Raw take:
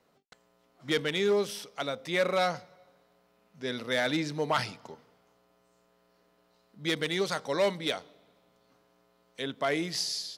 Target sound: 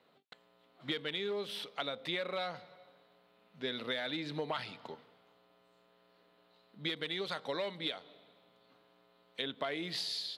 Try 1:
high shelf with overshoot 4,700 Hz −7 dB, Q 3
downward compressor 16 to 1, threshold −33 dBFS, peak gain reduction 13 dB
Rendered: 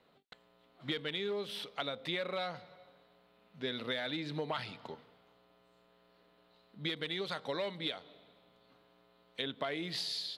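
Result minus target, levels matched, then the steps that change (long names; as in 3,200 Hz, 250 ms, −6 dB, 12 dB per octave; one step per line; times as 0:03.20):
125 Hz band +3.0 dB
add first: high-pass filter 160 Hz 6 dB per octave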